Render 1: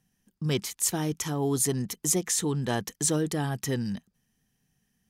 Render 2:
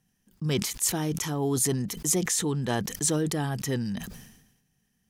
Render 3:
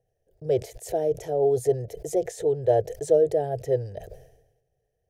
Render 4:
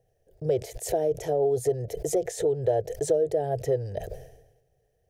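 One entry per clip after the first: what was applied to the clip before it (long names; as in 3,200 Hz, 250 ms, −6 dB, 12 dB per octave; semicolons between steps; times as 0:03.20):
level that may fall only so fast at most 60 dB per second
drawn EQ curve 120 Hz 0 dB, 220 Hz −28 dB, 440 Hz +11 dB, 640 Hz +14 dB, 1,100 Hz −26 dB, 1,700 Hz −12 dB, 2,900 Hz −17 dB; level +1.5 dB
downward compressor 3 to 1, threshold −29 dBFS, peak gain reduction 11 dB; level +5.5 dB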